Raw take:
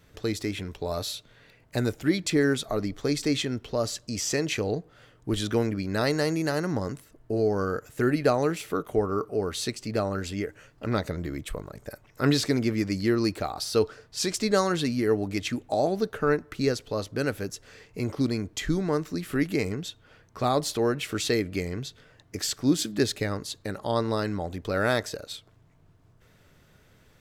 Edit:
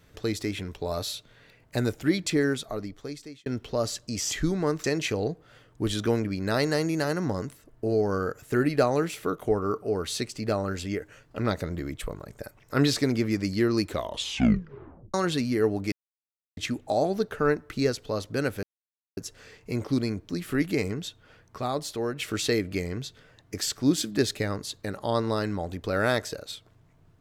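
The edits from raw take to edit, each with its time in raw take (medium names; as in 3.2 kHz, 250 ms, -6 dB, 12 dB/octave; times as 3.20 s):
2.21–3.46 s: fade out linear
13.31 s: tape stop 1.30 s
15.39 s: insert silence 0.65 s
17.45 s: insert silence 0.54 s
18.57–19.10 s: move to 4.31 s
20.39–21.00 s: gain -5 dB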